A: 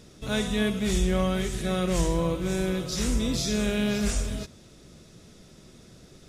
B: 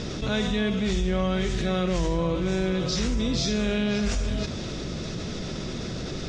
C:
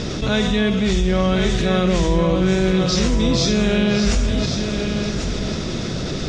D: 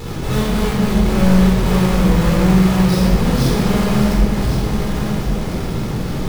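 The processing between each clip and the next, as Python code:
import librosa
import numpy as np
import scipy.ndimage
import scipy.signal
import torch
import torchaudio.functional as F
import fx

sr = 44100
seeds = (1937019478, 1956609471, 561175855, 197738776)

y1 = scipy.signal.sosfilt(scipy.signal.butter(4, 5900.0, 'lowpass', fs=sr, output='sos'), x)
y1 = fx.env_flatten(y1, sr, amount_pct=70)
y1 = y1 * librosa.db_to_amplitude(-2.5)
y2 = y1 + 10.0 ** (-7.5 / 20.0) * np.pad(y1, (int(1094 * sr / 1000.0), 0))[:len(y1)]
y2 = y2 * librosa.db_to_amplitude(7.0)
y3 = fx.halfwave_hold(y2, sr)
y3 = fx.room_shoebox(y3, sr, seeds[0], volume_m3=1600.0, walls='mixed', distance_m=4.1)
y3 = y3 * librosa.db_to_amplitude(-12.0)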